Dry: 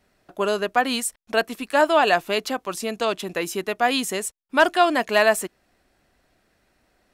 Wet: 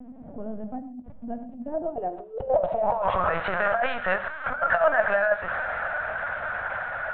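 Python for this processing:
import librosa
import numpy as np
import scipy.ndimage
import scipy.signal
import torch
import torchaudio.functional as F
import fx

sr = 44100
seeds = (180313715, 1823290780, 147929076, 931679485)

y = x + 0.5 * 10.0 ** (-23.0 / 20.0) * np.sign(x)
y = fx.doppler_pass(y, sr, speed_mps=15, closest_m=13.0, pass_at_s=2.6)
y = fx.filter_sweep_lowpass(y, sr, from_hz=250.0, to_hz=1500.0, start_s=1.79, end_s=3.41, q=6.3)
y = fx.lpc_vocoder(y, sr, seeds[0], excitation='pitch_kept', order=10)
y = fx.over_compress(y, sr, threshold_db=-25.0, ratio=-1.0)
y = fx.low_shelf_res(y, sr, hz=470.0, db=-9.0, q=3.0)
y = fx.rev_gated(y, sr, seeds[1], gate_ms=160, shape='flat', drr_db=11.0)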